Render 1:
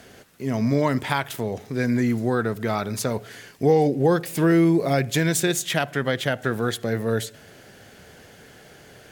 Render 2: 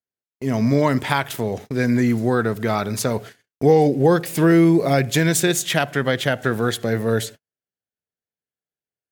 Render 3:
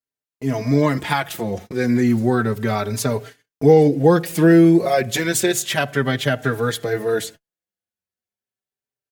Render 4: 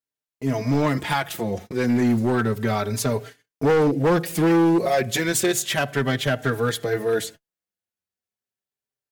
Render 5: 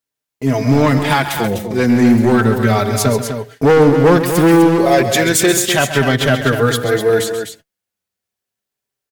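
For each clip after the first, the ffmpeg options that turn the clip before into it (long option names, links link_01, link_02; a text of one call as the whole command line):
ffmpeg -i in.wav -af "agate=range=-55dB:threshold=-37dB:ratio=16:detection=peak,volume=3.5dB" out.wav
ffmpeg -i in.wav -filter_complex "[0:a]asplit=2[link_01][link_02];[link_02]adelay=4.6,afreqshift=0.32[link_03];[link_01][link_03]amix=inputs=2:normalize=1,volume=3dB" out.wav
ffmpeg -i in.wav -af "asoftclip=type=hard:threshold=-13.5dB,volume=-1.5dB" out.wav
ffmpeg -i in.wav -af "aecho=1:1:134.1|250.7:0.282|0.398,volume=8dB" out.wav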